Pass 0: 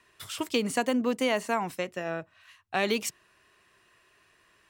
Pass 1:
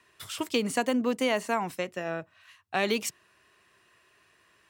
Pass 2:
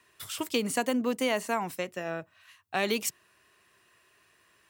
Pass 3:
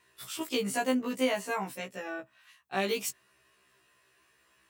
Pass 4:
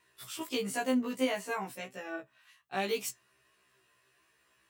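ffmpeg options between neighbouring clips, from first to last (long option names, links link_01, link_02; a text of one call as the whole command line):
ffmpeg -i in.wav -af "highpass=56" out.wav
ffmpeg -i in.wav -af "highshelf=frequency=10000:gain=9.5,volume=-1.5dB" out.wav
ffmpeg -i in.wav -af "afftfilt=real='re*1.73*eq(mod(b,3),0)':imag='im*1.73*eq(mod(b,3),0)':win_size=2048:overlap=0.75" out.wav
ffmpeg -i in.wav -af "flanger=delay=6:depth=2.8:regen=72:speed=1.4:shape=triangular,volume=1.5dB" out.wav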